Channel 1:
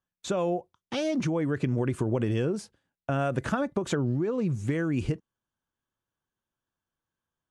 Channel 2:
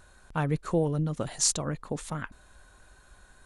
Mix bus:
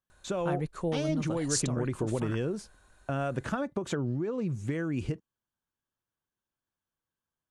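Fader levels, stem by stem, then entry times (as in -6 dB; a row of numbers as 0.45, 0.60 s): -4.0, -5.5 dB; 0.00, 0.10 s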